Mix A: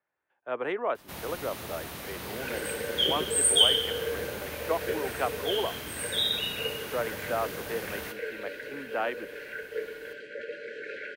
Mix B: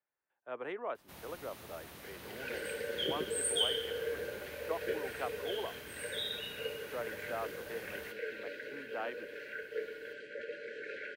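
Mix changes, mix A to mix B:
speech −9.5 dB
first sound −11.5 dB
second sound −4.5 dB

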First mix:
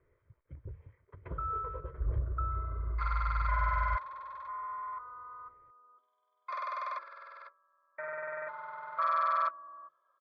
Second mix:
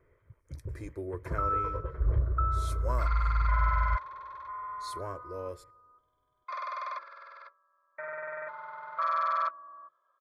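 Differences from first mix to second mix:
speech: unmuted
first sound +5.5 dB
reverb: on
master: remove high-frequency loss of the air 88 metres

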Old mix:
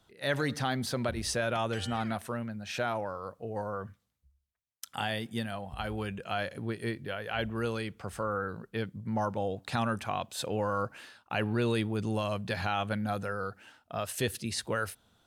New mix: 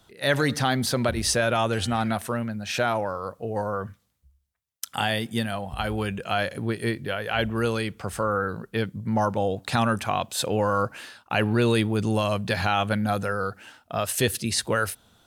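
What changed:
speech +7.5 dB
master: add high-shelf EQ 5,900 Hz +4 dB

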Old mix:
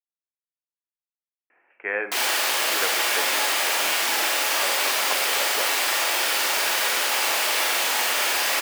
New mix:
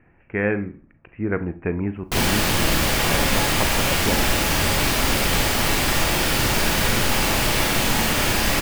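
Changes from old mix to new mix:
speech: entry −1.50 s
master: remove Bessel high-pass filter 670 Hz, order 4

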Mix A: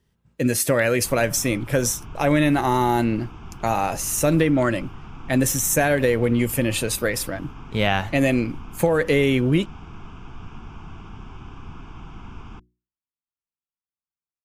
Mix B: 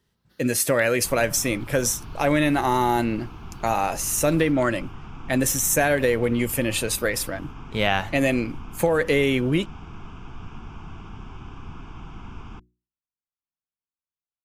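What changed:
speech: add low-shelf EQ 240 Hz −6 dB
first sound: unmuted

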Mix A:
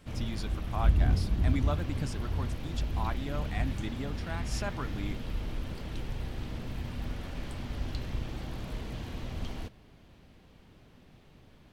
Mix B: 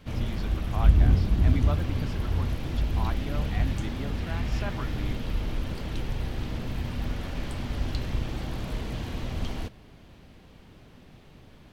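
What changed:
speech: add low-pass filter 4,000 Hz 12 dB per octave
background +5.5 dB

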